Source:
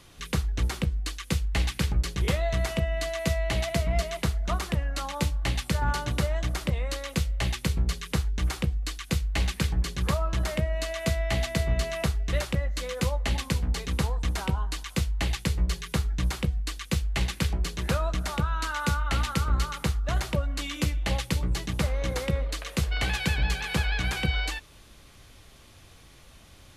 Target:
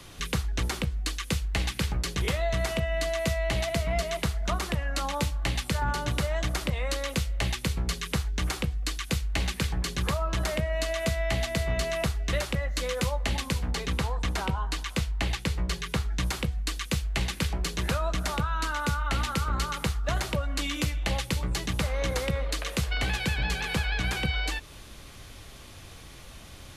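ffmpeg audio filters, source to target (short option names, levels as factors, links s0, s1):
-filter_complex "[0:a]asettb=1/sr,asplit=3[s0][s1][s2];[s0]atrim=end=13.714[s3];[s1]atrim=start=13.71:end=16.12,asetpts=PTS-STARTPTS,afade=t=in:d=0.004:c=qsin,afade=t=out:st=2.406:d=0.004:c=qsin,highshelf=f=5500:g=-6.5[s4];[s2]atrim=start=16.116[s5];[s3][s4]acrossfade=d=0.004:c1=hsin:c2=qsin[s6];[s6][s5]acrossfade=d=0.004:c1=qsin:c2=hsin,acrossover=split=130|570[s7][s8][s9];[s7]acompressor=threshold=0.0178:ratio=4[s10];[s8]acompressor=threshold=0.00891:ratio=4[s11];[s9]acompressor=threshold=0.0158:ratio=4[s12];[s10][s11][s12]amix=inputs=3:normalize=0,volume=2"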